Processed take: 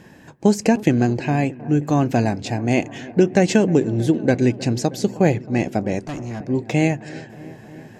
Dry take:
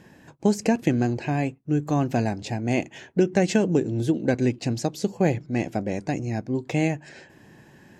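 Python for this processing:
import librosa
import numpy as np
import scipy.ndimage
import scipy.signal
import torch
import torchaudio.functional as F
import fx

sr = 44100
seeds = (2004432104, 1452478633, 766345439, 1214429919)

y = fx.echo_wet_lowpass(x, sr, ms=314, feedback_pct=76, hz=1600.0, wet_db=-19)
y = fx.tube_stage(y, sr, drive_db=30.0, bias=0.45, at=(5.99, 6.4))
y = y * 10.0 ** (5.0 / 20.0)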